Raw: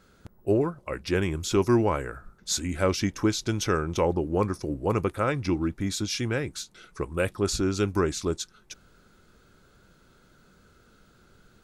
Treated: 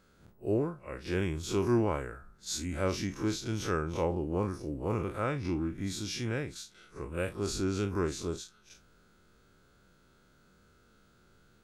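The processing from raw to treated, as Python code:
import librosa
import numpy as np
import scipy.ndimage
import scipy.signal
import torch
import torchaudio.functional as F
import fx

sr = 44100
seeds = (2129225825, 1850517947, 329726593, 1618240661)

y = fx.spec_blur(x, sr, span_ms=81.0)
y = F.gain(torch.from_numpy(y), -4.0).numpy()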